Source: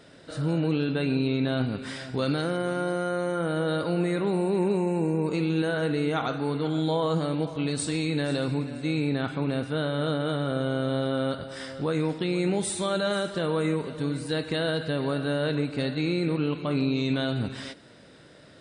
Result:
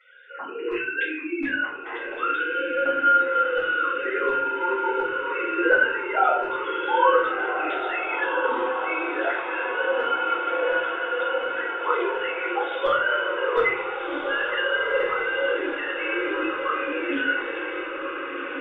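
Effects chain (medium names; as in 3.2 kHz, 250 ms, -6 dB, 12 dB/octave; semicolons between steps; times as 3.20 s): formants replaced by sine waves; LFO high-pass saw down 1.4 Hz 630–1700 Hz; echo that smears into a reverb 1502 ms, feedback 65%, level -5.5 dB; simulated room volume 70 m³, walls mixed, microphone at 2.3 m; trim -4.5 dB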